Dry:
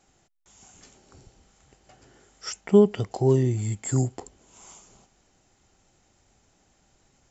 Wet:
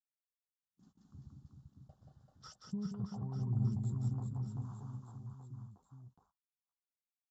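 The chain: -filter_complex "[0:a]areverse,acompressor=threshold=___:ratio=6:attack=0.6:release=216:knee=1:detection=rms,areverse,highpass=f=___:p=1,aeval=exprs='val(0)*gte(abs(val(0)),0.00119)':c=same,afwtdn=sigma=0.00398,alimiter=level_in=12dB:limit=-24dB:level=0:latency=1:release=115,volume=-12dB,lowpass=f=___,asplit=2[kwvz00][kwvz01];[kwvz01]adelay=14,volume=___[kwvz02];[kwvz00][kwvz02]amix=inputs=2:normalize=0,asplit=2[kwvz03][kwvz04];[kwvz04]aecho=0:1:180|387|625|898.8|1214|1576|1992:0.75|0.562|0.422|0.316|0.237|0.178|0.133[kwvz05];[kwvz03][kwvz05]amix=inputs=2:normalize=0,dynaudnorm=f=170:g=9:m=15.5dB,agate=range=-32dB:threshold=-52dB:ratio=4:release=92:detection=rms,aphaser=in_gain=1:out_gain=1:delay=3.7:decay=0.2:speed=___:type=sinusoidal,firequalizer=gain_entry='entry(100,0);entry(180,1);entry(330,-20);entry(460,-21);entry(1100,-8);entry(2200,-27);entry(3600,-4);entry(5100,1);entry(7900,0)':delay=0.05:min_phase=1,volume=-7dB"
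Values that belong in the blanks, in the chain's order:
-30dB, 190, 1900, -10.5dB, 1.1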